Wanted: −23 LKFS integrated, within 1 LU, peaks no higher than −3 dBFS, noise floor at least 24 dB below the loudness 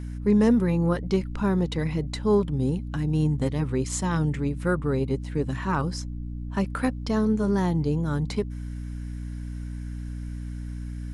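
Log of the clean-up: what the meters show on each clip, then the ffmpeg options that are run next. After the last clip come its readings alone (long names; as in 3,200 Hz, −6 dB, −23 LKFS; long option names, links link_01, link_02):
mains hum 60 Hz; hum harmonics up to 300 Hz; level of the hum −31 dBFS; integrated loudness −26.5 LKFS; sample peak −9.5 dBFS; target loudness −23.0 LKFS
→ -af "bandreject=frequency=60:width_type=h:width=6,bandreject=frequency=120:width_type=h:width=6,bandreject=frequency=180:width_type=h:width=6,bandreject=frequency=240:width_type=h:width=6,bandreject=frequency=300:width_type=h:width=6"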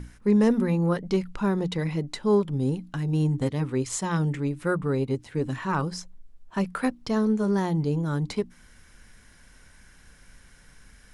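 mains hum none found; integrated loudness −26.5 LKFS; sample peak −9.5 dBFS; target loudness −23.0 LKFS
→ -af "volume=3.5dB"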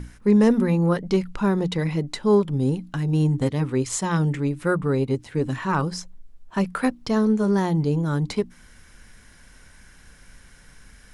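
integrated loudness −23.0 LKFS; sample peak −6.0 dBFS; background noise floor −50 dBFS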